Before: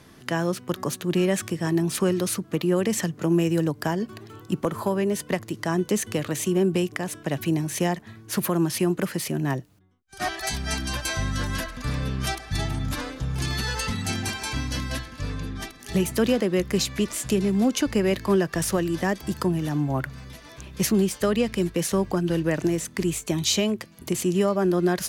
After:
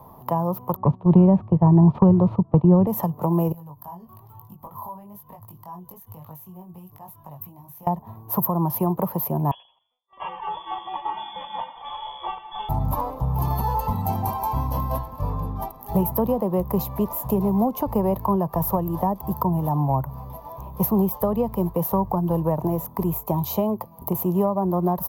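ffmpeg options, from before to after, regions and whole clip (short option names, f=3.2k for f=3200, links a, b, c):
-filter_complex "[0:a]asettb=1/sr,asplit=3[a][b][c];[a]atrim=end=0.764[d];[b]atrim=start=0.76:end=2.87,asetpts=PTS-STARTPTS,afade=t=in:d=0.004:c=qsin,afade=t=out:st=2.106:d=0.004:c=qsin,agate=range=-12dB:threshold=-30dB:ratio=16:release=100:detection=peak,lowpass=f=3.2k:w=0.5412,lowpass=f=3.2k:w=1.3066,lowshelf=f=360:g=12[e];[c]atrim=start=2.866[f];[d][e]acrossfade=d=0.004:c1=hsin:c2=qsin[g];[g][f]acrossfade=d=0.004:c1=qsin:c2=hsin,asettb=1/sr,asplit=3[h][i][j];[h]atrim=end=3.524[k];[i]atrim=start=3.52:end=7.87,asetpts=PTS-STARTPTS,afade=t=in:d=0.004:c=qsin,afade=t=out:st=4.346:d=0.004:c=qsin,equalizer=f=450:w=0.54:g=-14,acompressor=threshold=-38dB:ratio=16:attack=3.2:release=140:knee=1:detection=peak,flanger=delay=19:depth=3.4:speed=1.1[l];[j]atrim=start=7.866[m];[k][l]acrossfade=d=0.004:c1=hsin:c2=qsin[n];[n][m]acrossfade=d=0.004:c1=qsin:c2=hsin,asettb=1/sr,asplit=3[o][p][q];[o]atrim=end=9.514[r];[p]atrim=start=9.51:end=12.69,asetpts=PTS-STARTPTS,afade=t=in:d=0.004:c=qsin,afade=t=out:st=3.176:d=0.004:c=qsin,asplit=2[s][t];[t]adelay=84,lowpass=f=1.4k:p=1,volume=-12.5dB,asplit=2[u][v];[v]adelay=84,lowpass=f=1.4k:p=1,volume=0.29,asplit=2[w][x];[x]adelay=84,lowpass=f=1.4k:p=1,volume=0.29[y];[s][u][w][y]amix=inputs=4:normalize=0,atrim=end_sample=140238,lowpass=f=3k:t=q:w=0.5098,lowpass=f=3k:t=q:w=0.6013,lowpass=f=3k:t=q:w=0.9,lowpass=f=3k:t=q:w=2.563,afreqshift=-3500[z];[q]atrim=start=12.686[aa];[r][z]acrossfade=d=0.004:c1=hsin:c2=qsin[ab];[ab][aa]acrossfade=d=0.004:c1=qsin:c2=hsin,firequalizer=gain_entry='entry(150,0);entry(310,-9);entry(470,0);entry(960,14);entry(1500,-21);entry(8900,-23);entry(13000,12)':delay=0.05:min_phase=1,acrossover=split=280[ac][ad];[ad]acompressor=threshold=-26dB:ratio=6[ae];[ac][ae]amix=inputs=2:normalize=0,volume=4.5dB"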